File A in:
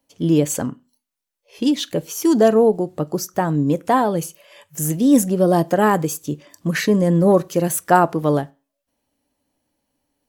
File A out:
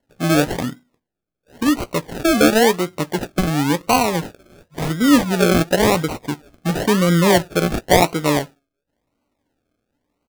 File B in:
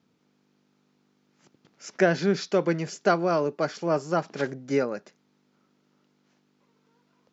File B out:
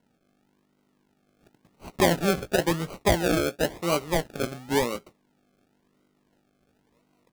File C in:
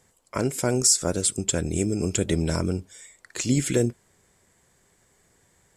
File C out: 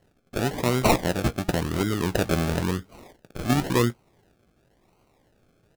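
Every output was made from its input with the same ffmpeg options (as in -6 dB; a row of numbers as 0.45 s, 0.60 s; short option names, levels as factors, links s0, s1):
-filter_complex "[0:a]acrusher=samples=36:mix=1:aa=0.000001:lfo=1:lforange=21.6:lforate=0.95,asplit=2[s0][s1];[s1]adelay=17,volume=0.2[s2];[s0][s2]amix=inputs=2:normalize=0"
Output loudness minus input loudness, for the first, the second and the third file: +0.5 LU, +0.5 LU, -1.0 LU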